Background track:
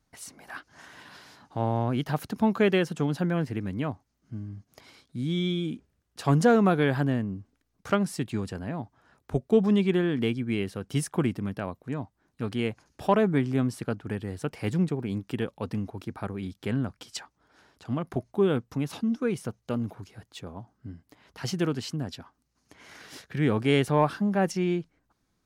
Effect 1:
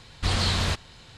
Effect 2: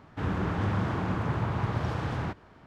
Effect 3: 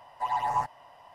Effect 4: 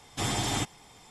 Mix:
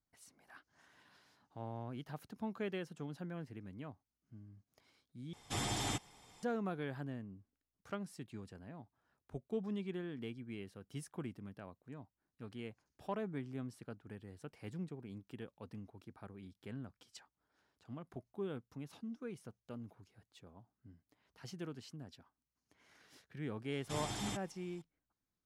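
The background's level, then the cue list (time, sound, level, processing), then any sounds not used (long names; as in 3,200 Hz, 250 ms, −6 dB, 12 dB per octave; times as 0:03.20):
background track −18 dB
0:05.33: overwrite with 4 −8 dB
0:23.72: mix in 4 −12.5 dB
not used: 1, 2, 3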